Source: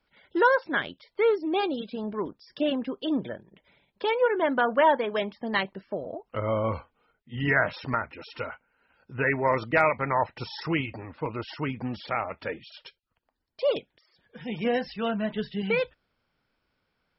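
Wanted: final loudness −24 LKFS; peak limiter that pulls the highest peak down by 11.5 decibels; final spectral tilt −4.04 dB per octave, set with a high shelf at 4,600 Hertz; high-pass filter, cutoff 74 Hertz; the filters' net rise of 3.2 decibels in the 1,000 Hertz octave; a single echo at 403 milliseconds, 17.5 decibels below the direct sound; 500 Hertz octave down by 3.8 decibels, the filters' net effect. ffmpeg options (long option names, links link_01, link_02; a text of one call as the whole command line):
ffmpeg -i in.wav -af "highpass=74,equalizer=frequency=500:width_type=o:gain=-6,equalizer=frequency=1000:width_type=o:gain=5.5,highshelf=frequency=4600:gain=-7,alimiter=limit=-18.5dB:level=0:latency=1,aecho=1:1:403:0.133,volume=7.5dB" out.wav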